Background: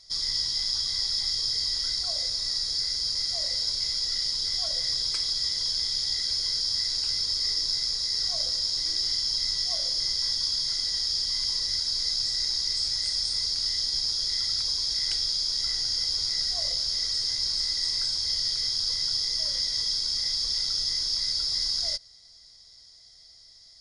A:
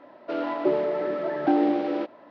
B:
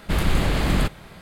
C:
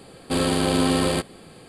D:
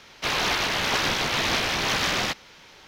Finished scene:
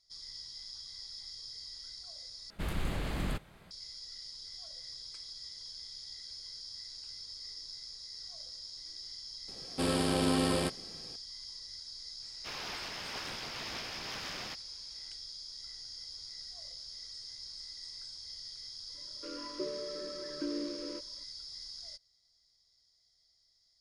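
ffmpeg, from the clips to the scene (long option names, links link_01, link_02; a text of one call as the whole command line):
ffmpeg -i bed.wav -i cue0.wav -i cue1.wav -i cue2.wav -i cue3.wav -filter_complex "[0:a]volume=-18.5dB[link_01];[1:a]asuperstop=centerf=760:order=20:qfactor=2.3[link_02];[link_01]asplit=2[link_03][link_04];[link_03]atrim=end=2.504[link_05];[2:a]atrim=end=1.21,asetpts=PTS-STARTPTS,volume=-14dB[link_06];[link_04]atrim=start=3.706[link_07];[3:a]atrim=end=1.68,asetpts=PTS-STARTPTS,volume=-8.5dB,afade=type=in:duration=0.004:curve=hsin,afade=type=out:start_time=1.676:duration=0.004:curve=hsin,adelay=9480[link_08];[4:a]atrim=end=2.87,asetpts=PTS-STARTPTS,volume=-18dB,afade=type=in:duration=0.004:curve=hsin,afade=type=out:start_time=2.866:duration=0.004:curve=hsin,adelay=12220[link_09];[link_02]atrim=end=2.3,asetpts=PTS-STARTPTS,volume=-15dB,afade=type=in:duration=0.004:curve=hsin,afade=type=out:start_time=2.296:duration=0.004:curve=hsin,adelay=18940[link_10];[link_05][link_06]acrossfade=duration=0.004:curve1=hsin:curve2=hsin[link_11];[link_11][link_07]acrossfade=duration=0.004:curve1=hsin:curve2=hsin[link_12];[link_12][link_08][link_09][link_10]amix=inputs=4:normalize=0" out.wav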